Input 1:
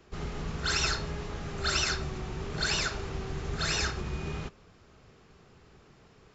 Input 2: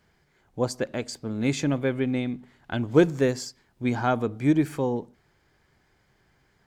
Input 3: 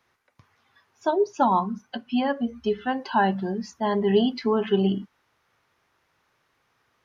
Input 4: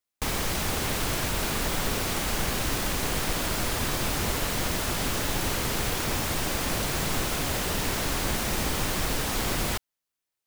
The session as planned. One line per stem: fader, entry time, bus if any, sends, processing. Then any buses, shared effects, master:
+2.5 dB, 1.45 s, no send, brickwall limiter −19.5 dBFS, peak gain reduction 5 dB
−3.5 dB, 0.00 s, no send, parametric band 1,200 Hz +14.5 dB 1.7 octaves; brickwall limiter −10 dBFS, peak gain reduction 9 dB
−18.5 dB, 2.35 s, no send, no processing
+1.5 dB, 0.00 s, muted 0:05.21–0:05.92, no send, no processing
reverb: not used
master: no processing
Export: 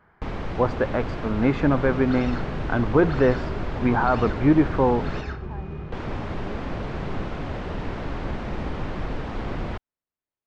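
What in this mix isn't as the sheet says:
stem 2 −3.5 dB → +4.0 dB
master: extra head-to-tape spacing loss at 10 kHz 44 dB

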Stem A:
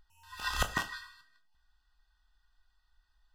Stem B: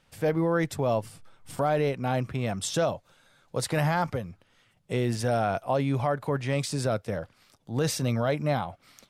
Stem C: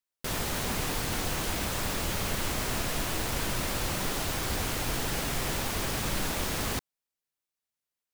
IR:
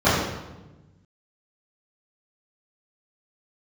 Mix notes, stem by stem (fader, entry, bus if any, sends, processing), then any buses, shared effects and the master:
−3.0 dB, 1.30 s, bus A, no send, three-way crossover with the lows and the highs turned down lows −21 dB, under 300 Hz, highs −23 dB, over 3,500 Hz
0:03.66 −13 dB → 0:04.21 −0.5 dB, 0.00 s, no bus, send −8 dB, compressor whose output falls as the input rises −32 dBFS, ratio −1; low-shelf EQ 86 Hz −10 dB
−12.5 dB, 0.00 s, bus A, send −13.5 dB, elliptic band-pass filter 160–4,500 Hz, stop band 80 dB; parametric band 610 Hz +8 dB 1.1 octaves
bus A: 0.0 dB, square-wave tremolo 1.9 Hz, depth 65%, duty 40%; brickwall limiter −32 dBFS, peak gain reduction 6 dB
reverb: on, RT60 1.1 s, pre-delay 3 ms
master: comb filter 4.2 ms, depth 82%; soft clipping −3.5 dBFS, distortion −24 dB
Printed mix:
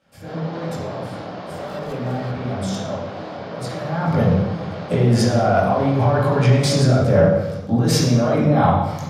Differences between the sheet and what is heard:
stem A: missing three-way crossover with the lows and the highs turned down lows −21 dB, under 300 Hz, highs −23 dB, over 3,500 Hz
master: missing comb filter 4.2 ms, depth 82%

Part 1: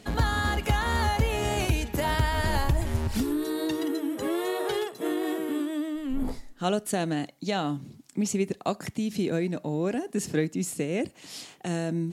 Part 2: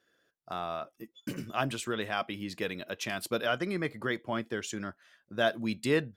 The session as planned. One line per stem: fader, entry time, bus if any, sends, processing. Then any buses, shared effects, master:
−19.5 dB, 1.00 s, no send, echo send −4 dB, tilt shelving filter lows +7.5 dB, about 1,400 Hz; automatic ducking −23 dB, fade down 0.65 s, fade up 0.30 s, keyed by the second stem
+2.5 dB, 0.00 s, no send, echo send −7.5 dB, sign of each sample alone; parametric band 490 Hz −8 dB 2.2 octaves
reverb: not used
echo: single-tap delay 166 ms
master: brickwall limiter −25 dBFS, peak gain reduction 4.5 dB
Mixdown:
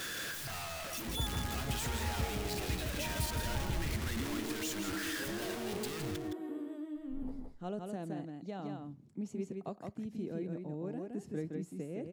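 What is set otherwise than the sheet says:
stem 2 +2.5 dB → −4.5 dB
master: missing brickwall limiter −25 dBFS, peak gain reduction 4.5 dB

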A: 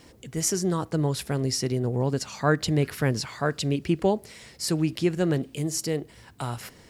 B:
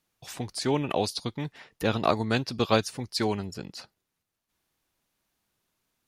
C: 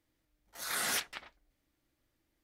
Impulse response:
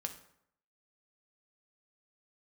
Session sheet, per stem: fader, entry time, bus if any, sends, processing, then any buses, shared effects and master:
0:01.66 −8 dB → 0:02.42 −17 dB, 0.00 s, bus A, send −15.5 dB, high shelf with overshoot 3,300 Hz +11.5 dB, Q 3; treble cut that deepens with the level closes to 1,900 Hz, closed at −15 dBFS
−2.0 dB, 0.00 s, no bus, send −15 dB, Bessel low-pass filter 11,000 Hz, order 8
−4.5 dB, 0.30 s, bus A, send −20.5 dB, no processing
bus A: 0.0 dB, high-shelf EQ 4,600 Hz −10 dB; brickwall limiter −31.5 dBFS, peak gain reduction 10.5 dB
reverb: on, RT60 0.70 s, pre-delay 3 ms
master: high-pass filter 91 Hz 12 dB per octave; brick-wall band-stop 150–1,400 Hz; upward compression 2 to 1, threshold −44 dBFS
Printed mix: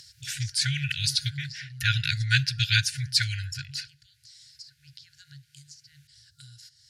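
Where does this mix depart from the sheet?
stem B −2.0 dB → +7.5 dB
stem C −4.5 dB → −15.5 dB

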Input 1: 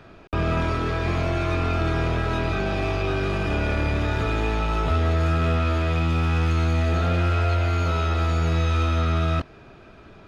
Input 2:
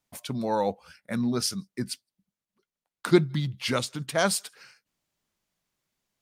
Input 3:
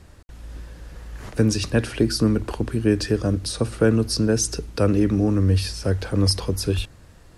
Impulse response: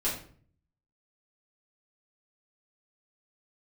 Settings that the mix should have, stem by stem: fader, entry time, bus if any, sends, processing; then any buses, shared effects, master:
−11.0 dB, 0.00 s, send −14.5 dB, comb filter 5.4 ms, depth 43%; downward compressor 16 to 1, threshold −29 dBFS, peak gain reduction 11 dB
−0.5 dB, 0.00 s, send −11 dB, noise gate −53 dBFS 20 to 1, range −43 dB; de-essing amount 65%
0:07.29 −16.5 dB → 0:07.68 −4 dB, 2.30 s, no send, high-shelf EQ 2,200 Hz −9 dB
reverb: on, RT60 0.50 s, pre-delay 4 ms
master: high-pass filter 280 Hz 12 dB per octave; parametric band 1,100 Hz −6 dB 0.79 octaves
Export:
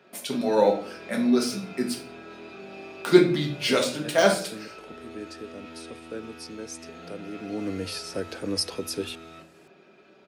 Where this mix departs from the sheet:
stem 3: missing high-shelf EQ 2,200 Hz −9 dB
reverb return +9.0 dB

